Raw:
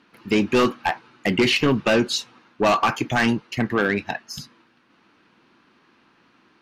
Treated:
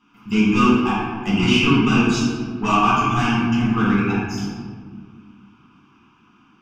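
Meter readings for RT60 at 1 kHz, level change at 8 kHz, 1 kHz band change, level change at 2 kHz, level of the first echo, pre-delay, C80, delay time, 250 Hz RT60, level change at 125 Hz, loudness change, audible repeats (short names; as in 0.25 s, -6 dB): 1.6 s, +0.5 dB, +4.0 dB, +0.5 dB, none, 5 ms, 1.0 dB, none, 2.9 s, +7.5 dB, +3.0 dB, none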